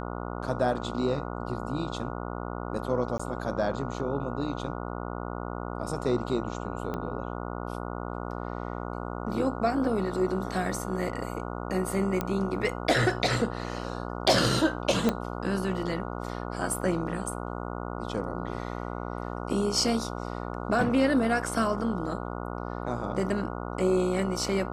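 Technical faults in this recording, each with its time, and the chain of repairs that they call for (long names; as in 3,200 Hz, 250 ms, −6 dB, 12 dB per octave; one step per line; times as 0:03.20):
mains buzz 60 Hz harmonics 24 −35 dBFS
0:03.18–0:03.19: drop-out 15 ms
0:06.94: click −21 dBFS
0:12.21: click −14 dBFS
0:15.09: click −11 dBFS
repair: click removal
hum removal 60 Hz, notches 24
repair the gap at 0:03.18, 15 ms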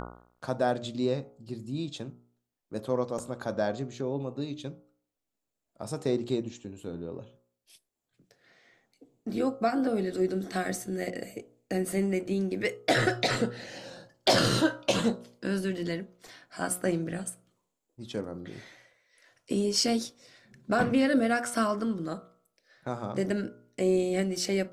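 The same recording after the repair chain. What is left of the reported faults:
0:06.94: click
0:12.21: click
0:15.09: click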